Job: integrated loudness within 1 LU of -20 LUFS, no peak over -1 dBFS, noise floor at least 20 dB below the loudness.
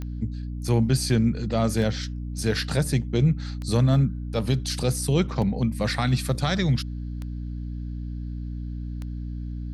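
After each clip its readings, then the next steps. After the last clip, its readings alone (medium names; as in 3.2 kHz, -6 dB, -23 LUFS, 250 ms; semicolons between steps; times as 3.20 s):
clicks found 6; hum 60 Hz; highest harmonic 300 Hz; hum level -29 dBFS; loudness -26.0 LUFS; peak level -9.0 dBFS; loudness target -20.0 LUFS
-> de-click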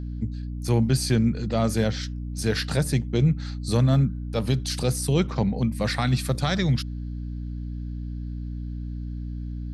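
clicks found 0; hum 60 Hz; highest harmonic 300 Hz; hum level -29 dBFS
-> hum notches 60/120/180/240/300 Hz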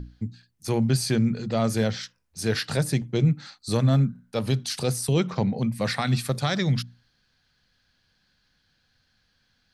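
hum not found; loudness -25.5 LUFS; peak level -10.5 dBFS; loudness target -20.0 LUFS
-> trim +5.5 dB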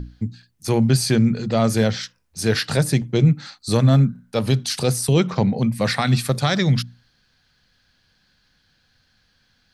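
loudness -20.0 LUFS; peak level -5.0 dBFS; noise floor -64 dBFS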